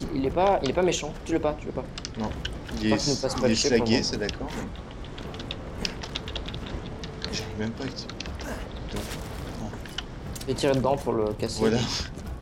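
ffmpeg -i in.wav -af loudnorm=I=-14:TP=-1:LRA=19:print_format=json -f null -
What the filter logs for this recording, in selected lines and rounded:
"input_i" : "-28.3",
"input_tp" : "-7.2",
"input_lra" : "7.4",
"input_thresh" : "-38.3",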